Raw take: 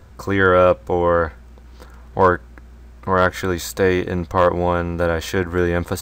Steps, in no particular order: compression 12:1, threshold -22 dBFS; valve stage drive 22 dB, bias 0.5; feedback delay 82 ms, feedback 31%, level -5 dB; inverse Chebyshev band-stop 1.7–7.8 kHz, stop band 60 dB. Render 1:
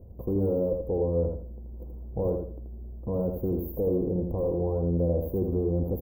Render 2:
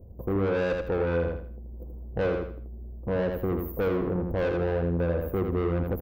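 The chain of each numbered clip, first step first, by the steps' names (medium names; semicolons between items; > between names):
valve stage > inverse Chebyshev band-stop > compression > feedback delay; inverse Chebyshev band-stop > valve stage > feedback delay > compression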